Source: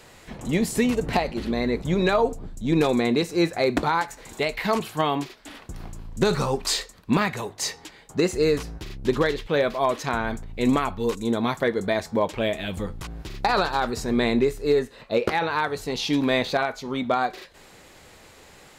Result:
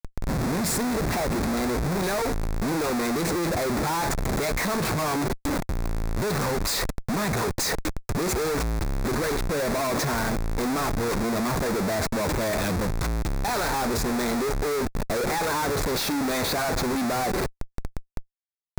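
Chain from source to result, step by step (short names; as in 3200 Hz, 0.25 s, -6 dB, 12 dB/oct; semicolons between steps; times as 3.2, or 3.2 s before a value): Schmitt trigger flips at -39 dBFS; bell 3000 Hz -12.5 dB 0.33 oct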